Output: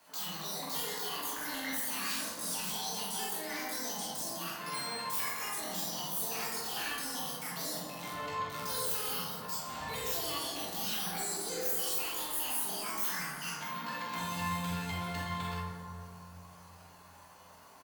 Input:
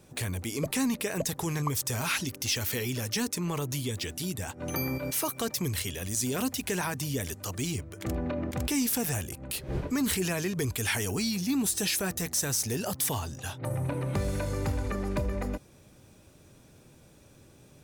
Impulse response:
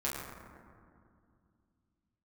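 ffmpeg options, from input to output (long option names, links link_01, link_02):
-filter_complex "[0:a]acrossover=split=420 6500:gain=0.0794 1 0.2[link_01][link_02][link_03];[link_01][link_02][link_03]amix=inputs=3:normalize=0,acrossover=split=170|1100|6700[link_04][link_05][link_06][link_07];[link_05]acompressor=threshold=-51dB:ratio=4[link_08];[link_06]alimiter=level_in=7dB:limit=-24dB:level=0:latency=1:release=40,volume=-7dB[link_09];[link_04][link_08][link_09][link_07]amix=inputs=4:normalize=0,asoftclip=type=hard:threshold=-36.5dB,aexciter=amount=6.4:drive=4.3:freq=9300,asetrate=78577,aresample=44100,atempo=0.561231,aecho=1:1:27|45:0.531|0.501[link_10];[1:a]atrim=start_sample=2205,asetrate=36603,aresample=44100[link_11];[link_10][link_11]afir=irnorm=-1:irlink=0"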